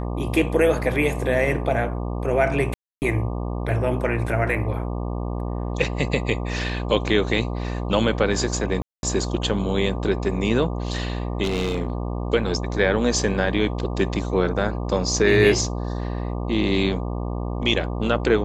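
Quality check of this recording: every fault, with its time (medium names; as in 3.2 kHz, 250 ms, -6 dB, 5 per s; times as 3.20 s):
buzz 60 Hz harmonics 20 -27 dBFS
2.74–3.02 s: dropout 279 ms
8.82–9.03 s: dropout 211 ms
11.43–11.93 s: clipped -19 dBFS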